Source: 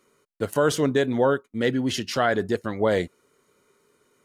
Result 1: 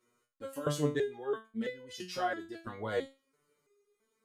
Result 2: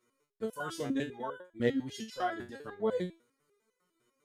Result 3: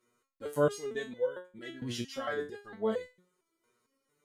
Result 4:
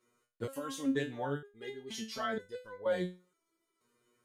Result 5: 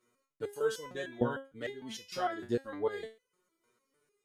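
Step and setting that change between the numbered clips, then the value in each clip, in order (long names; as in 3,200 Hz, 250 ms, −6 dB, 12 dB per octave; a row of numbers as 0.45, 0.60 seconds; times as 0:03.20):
step-sequenced resonator, speed: 3, 10, 4.4, 2.1, 6.6 Hertz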